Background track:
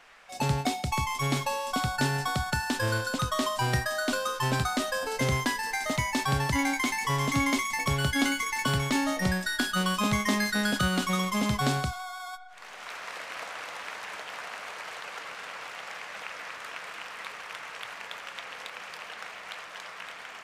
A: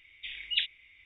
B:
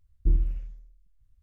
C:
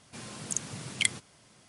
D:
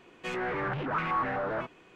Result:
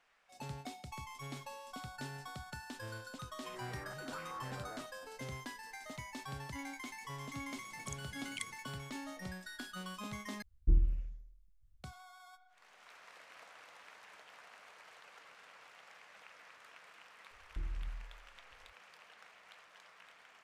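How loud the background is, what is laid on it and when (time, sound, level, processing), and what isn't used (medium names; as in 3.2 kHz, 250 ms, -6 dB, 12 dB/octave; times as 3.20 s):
background track -18 dB
3.20 s: add D -17 dB
7.36 s: add C -16.5 dB
10.42 s: replace with B -5 dB
17.31 s: add B -6 dB + compression, threshold -30 dBFS
not used: A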